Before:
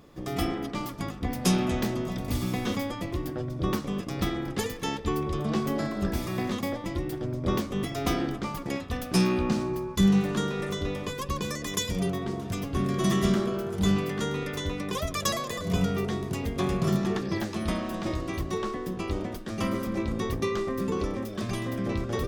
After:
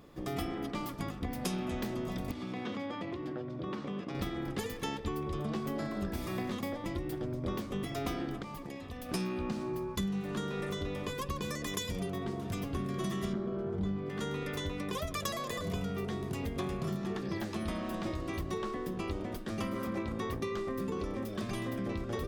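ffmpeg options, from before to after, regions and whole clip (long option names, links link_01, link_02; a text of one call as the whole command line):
ffmpeg -i in.wav -filter_complex "[0:a]asettb=1/sr,asplit=3[link_01][link_02][link_03];[link_01]atrim=end=2.314[link_04];[link_02]atrim=start=2.31:end=4.15,asetpts=PTS-STARTPTS,afade=type=in:duration=0.004:curve=qsin,afade=type=out:start_time=1.836:duration=0.004:curve=qsin,acompressor=threshold=-30dB:ratio=4:attack=3.2:release=140:knee=1:detection=peak,highpass=150,lowpass=4000[link_05];[link_03]atrim=start=4.146[link_06];[link_04][link_05]acrossfade=duration=0.004:curve1=hsin:curve2=qsin[link_07];[link_07][link_06]acrossfade=duration=0.004:curve1=qsin:curve2=hsin,asettb=1/sr,asplit=3[link_08][link_09][link_10];[link_08]atrim=end=8.424[link_11];[link_09]atrim=start=8.42:end=9.09,asetpts=PTS-STARTPTS,afade=type=in:duration=0.004:curve=qsin,afade=type=out:start_time=0.666:duration=0.004:curve=qsin,bandreject=frequency=1400:width=6.4,acompressor=threshold=-36dB:ratio=12:attack=3.2:release=140:knee=1:detection=peak[link_12];[link_10]atrim=start=9.086[link_13];[link_11][link_12]acrossfade=duration=0.004:curve1=hsin:curve2=qsin[link_14];[link_14][link_13]acrossfade=duration=0.004:curve1=qsin:curve2=hsin,asettb=1/sr,asplit=3[link_15][link_16][link_17];[link_15]atrim=end=13.334[link_18];[link_16]atrim=start=13.33:end=14.1,asetpts=PTS-STARTPTS,afade=type=in:duration=0.004:curve=qsin,afade=type=out:start_time=0.766:duration=0.004:curve=qsin,tiltshelf=frequency=1100:gain=5,bandreject=frequency=2700:width=13,adynamicsmooth=sensitivity=3.5:basefreq=4000[link_19];[link_17]atrim=start=14.096[link_20];[link_18][link_19]acrossfade=duration=0.004:curve1=hsin:curve2=qsin[link_21];[link_21][link_20]acrossfade=duration=0.004:curve1=qsin:curve2=hsin,asettb=1/sr,asplit=3[link_22][link_23][link_24];[link_22]atrim=end=19.764[link_25];[link_23]atrim=start=19.76:end=20.39,asetpts=PTS-STARTPTS,afade=type=in:duration=0.004:curve=qsin,afade=type=out:start_time=0.626:duration=0.004:curve=qsin,highpass=44,equalizer=frequency=1200:width_type=o:width=2.1:gain=4.5[link_26];[link_24]atrim=start=20.386[link_27];[link_25][link_26]acrossfade=duration=0.004:curve1=hsin:curve2=qsin[link_28];[link_28][link_27]acrossfade=duration=0.004:curve1=qsin:curve2=hsin,equalizer=frequency=6100:width_type=o:width=0.77:gain=-3,bandreject=frequency=60:width_type=h:width=6,bandreject=frequency=120:width_type=h:width=6,bandreject=frequency=180:width_type=h:width=6,acompressor=threshold=-30dB:ratio=6,volume=-2dB" out.wav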